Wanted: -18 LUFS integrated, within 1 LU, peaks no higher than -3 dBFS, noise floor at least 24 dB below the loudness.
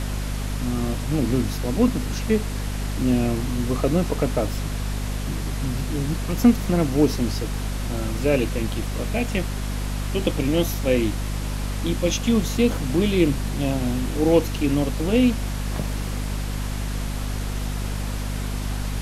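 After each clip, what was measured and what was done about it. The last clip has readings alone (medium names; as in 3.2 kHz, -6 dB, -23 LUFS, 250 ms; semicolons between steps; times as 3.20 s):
hum 50 Hz; highest harmonic 250 Hz; hum level -24 dBFS; noise floor -28 dBFS; noise floor target -48 dBFS; loudness -24.0 LUFS; peak level -4.5 dBFS; loudness target -18.0 LUFS
-> hum notches 50/100/150/200/250 Hz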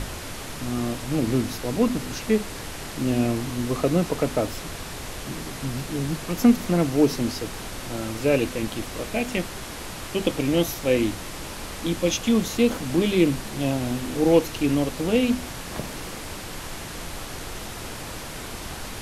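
hum not found; noise floor -36 dBFS; noise floor target -50 dBFS
-> noise print and reduce 14 dB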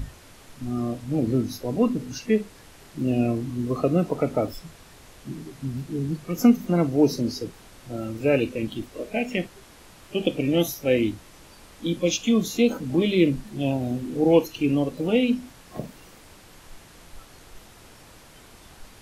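noise floor -50 dBFS; loudness -24.5 LUFS; peak level -6.0 dBFS; loudness target -18.0 LUFS
-> trim +6.5 dB; peak limiter -3 dBFS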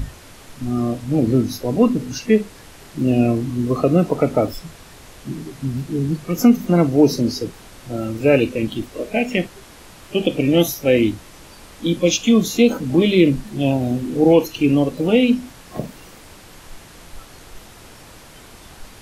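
loudness -18.5 LUFS; peak level -3.0 dBFS; noise floor -43 dBFS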